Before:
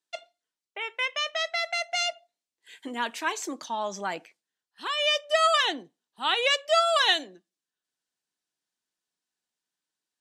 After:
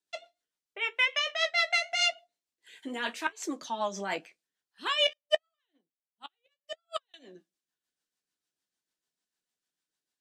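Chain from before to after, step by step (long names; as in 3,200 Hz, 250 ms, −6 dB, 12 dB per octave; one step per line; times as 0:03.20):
dynamic equaliser 2,300 Hz, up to +4 dB, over −35 dBFS, Q 0.93
gate with flip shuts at −13 dBFS, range −26 dB
flanger 0.86 Hz, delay 9.6 ms, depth 5.8 ms, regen −47%
rotating-speaker cabinet horn 6.7 Hz
0:05.13–0:07.14: expander for the loud parts 2.5 to 1, over −49 dBFS
level +5 dB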